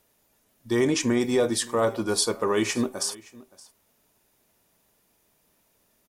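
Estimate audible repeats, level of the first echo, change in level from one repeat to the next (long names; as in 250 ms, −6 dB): 1, −22.0 dB, repeats not evenly spaced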